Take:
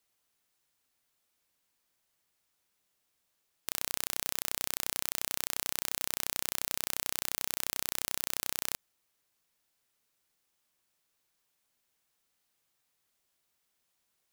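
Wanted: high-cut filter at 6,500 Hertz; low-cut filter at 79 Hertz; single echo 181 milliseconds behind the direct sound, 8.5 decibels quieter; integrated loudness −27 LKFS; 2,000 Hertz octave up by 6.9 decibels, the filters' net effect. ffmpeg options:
ffmpeg -i in.wav -af "highpass=79,lowpass=6500,equalizer=frequency=2000:width_type=o:gain=8.5,aecho=1:1:181:0.376,volume=8dB" out.wav

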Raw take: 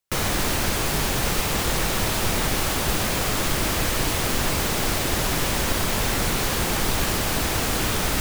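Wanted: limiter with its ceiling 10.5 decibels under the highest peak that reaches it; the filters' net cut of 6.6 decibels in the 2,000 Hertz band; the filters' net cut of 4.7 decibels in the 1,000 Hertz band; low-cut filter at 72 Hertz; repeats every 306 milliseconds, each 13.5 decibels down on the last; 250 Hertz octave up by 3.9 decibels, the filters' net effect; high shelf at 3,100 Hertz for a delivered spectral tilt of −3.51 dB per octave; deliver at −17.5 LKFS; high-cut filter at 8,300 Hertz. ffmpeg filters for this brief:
ffmpeg -i in.wav -af "highpass=72,lowpass=8300,equalizer=frequency=250:width_type=o:gain=5.5,equalizer=frequency=1000:width_type=o:gain=-4.5,equalizer=frequency=2000:width_type=o:gain=-8.5,highshelf=frequency=3100:gain=3,alimiter=limit=-22dB:level=0:latency=1,aecho=1:1:306|612:0.211|0.0444,volume=12.5dB" out.wav

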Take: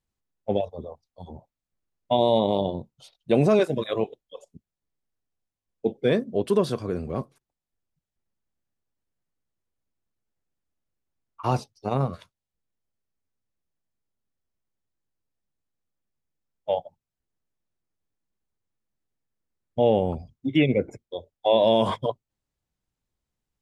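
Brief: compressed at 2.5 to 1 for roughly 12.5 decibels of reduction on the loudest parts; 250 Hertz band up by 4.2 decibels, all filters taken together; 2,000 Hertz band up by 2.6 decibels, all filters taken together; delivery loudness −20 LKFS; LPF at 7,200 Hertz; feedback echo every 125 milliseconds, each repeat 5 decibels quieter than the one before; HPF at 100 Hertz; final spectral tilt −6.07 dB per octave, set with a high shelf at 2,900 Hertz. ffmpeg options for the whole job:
ffmpeg -i in.wav -af "highpass=100,lowpass=7200,equalizer=frequency=250:width_type=o:gain=5.5,equalizer=frequency=2000:width_type=o:gain=5,highshelf=frequency=2900:gain=-4,acompressor=threshold=-32dB:ratio=2.5,aecho=1:1:125|250|375|500|625|750|875:0.562|0.315|0.176|0.0988|0.0553|0.031|0.0173,volume=13dB" out.wav

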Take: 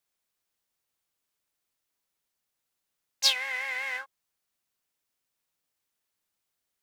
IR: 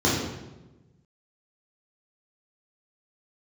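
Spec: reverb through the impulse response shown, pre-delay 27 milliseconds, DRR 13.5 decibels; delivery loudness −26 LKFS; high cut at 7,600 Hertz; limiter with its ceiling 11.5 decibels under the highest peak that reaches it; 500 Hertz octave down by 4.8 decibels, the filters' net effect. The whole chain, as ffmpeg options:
-filter_complex "[0:a]lowpass=7600,equalizer=frequency=500:width_type=o:gain=-5,alimiter=limit=-21.5dB:level=0:latency=1,asplit=2[link_01][link_02];[1:a]atrim=start_sample=2205,adelay=27[link_03];[link_02][link_03]afir=irnorm=-1:irlink=0,volume=-30.5dB[link_04];[link_01][link_04]amix=inputs=2:normalize=0,volume=6dB"

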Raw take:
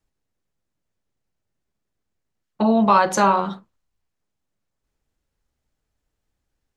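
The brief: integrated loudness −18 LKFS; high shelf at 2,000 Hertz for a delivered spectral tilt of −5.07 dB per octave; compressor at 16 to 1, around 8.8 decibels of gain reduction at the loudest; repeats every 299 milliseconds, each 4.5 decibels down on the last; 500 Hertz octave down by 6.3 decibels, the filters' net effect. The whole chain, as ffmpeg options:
ffmpeg -i in.wav -af "equalizer=frequency=500:width_type=o:gain=-8,highshelf=frequency=2000:gain=-4.5,acompressor=threshold=-22dB:ratio=16,aecho=1:1:299|598|897|1196|1495|1794|2093|2392|2691:0.596|0.357|0.214|0.129|0.0772|0.0463|0.0278|0.0167|0.01,volume=10dB" out.wav

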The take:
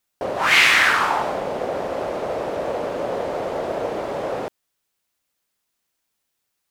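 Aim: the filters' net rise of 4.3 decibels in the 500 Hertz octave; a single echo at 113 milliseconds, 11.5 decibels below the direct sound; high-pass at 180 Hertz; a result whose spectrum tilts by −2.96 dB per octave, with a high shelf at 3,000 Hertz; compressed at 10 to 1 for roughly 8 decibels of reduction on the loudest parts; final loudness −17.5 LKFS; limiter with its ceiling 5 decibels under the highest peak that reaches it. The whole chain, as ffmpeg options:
ffmpeg -i in.wav -af "highpass=180,equalizer=frequency=500:width_type=o:gain=5,highshelf=frequency=3000:gain=4,acompressor=threshold=-17dB:ratio=10,alimiter=limit=-14.5dB:level=0:latency=1,aecho=1:1:113:0.266,volume=6dB" out.wav

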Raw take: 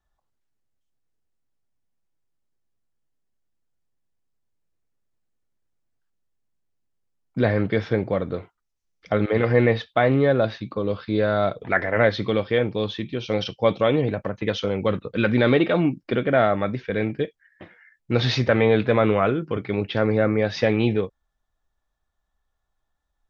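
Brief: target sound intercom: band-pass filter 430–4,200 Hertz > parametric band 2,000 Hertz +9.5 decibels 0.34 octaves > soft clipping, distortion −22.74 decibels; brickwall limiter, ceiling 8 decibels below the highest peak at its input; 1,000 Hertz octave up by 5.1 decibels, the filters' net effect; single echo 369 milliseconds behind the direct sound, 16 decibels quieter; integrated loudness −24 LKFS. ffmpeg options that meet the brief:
ffmpeg -i in.wav -af "equalizer=frequency=1000:width_type=o:gain=7.5,alimiter=limit=-9.5dB:level=0:latency=1,highpass=430,lowpass=4200,equalizer=frequency=2000:width_type=o:width=0.34:gain=9.5,aecho=1:1:369:0.158,asoftclip=threshold=-10.5dB,volume=1.5dB" out.wav

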